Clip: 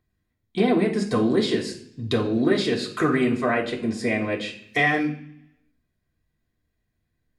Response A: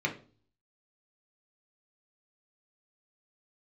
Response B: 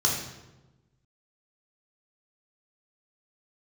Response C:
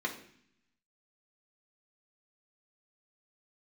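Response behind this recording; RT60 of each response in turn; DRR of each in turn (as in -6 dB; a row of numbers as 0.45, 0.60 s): C; 0.40, 1.1, 0.60 s; 0.0, -2.5, -2.0 dB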